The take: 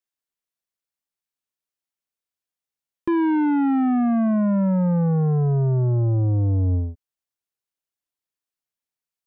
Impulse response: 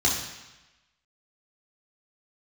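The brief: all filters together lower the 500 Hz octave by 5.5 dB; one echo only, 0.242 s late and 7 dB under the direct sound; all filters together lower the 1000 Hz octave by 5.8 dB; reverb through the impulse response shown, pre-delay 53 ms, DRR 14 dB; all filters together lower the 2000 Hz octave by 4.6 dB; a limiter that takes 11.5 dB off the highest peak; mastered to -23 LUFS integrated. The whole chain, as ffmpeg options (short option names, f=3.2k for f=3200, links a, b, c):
-filter_complex "[0:a]equalizer=f=500:t=o:g=-7,equalizer=f=1k:t=o:g=-4,equalizer=f=2k:t=o:g=-4,alimiter=level_in=5dB:limit=-24dB:level=0:latency=1,volume=-5dB,aecho=1:1:242:0.447,asplit=2[a][b];[1:a]atrim=start_sample=2205,adelay=53[c];[b][c]afir=irnorm=-1:irlink=0,volume=-27dB[d];[a][d]amix=inputs=2:normalize=0,volume=9dB"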